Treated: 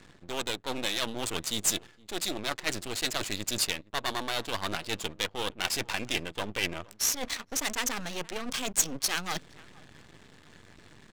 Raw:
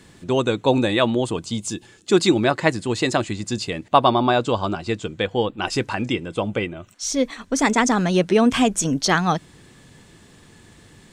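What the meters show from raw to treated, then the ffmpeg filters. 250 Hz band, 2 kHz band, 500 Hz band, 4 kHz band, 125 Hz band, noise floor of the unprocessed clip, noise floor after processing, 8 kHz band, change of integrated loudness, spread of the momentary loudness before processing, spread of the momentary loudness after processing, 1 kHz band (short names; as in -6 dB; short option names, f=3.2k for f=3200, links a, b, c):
-18.5 dB, -8.0 dB, -17.0 dB, -3.5 dB, -17.5 dB, -50 dBFS, -57 dBFS, -1.5 dB, -10.0 dB, 10 LU, 7 LU, -14.5 dB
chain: -af "areverse,acompressor=threshold=-27dB:ratio=12,areverse,aeval=exprs='max(val(0),0)':c=same,aecho=1:1:465:0.0794,crystalizer=i=8.5:c=0,adynamicsmooth=sensitivity=7.5:basefreq=1.2k,volume=-2.5dB"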